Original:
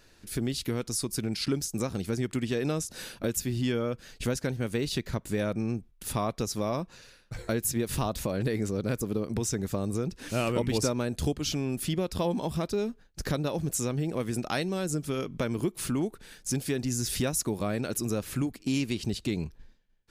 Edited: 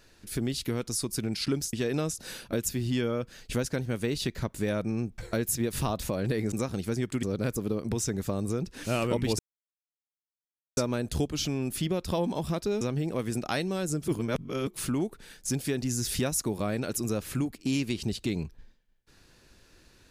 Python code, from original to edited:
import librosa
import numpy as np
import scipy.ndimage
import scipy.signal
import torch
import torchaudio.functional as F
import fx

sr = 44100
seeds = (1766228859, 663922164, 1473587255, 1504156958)

y = fx.edit(x, sr, fx.move(start_s=1.73, length_s=0.71, to_s=8.68),
    fx.cut(start_s=5.89, length_s=1.45),
    fx.insert_silence(at_s=10.84, length_s=1.38),
    fx.cut(start_s=12.88, length_s=0.94),
    fx.reverse_span(start_s=15.09, length_s=0.59), tone=tone)